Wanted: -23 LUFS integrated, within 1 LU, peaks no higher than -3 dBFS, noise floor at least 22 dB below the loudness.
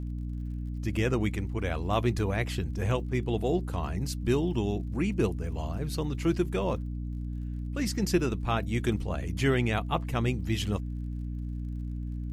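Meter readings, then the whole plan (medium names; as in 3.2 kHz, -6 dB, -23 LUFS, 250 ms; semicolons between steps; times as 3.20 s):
tick rate 45 per s; hum 60 Hz; highest harmonic 300 Hz; hum level -32 dBFS; loudness -30.5 LUFS; peak level -12.0 dBFS; loudness target -23.0 LUFS
-> de-click; hum notches 60/120/180/240/300 Hz; trim +7.5 dB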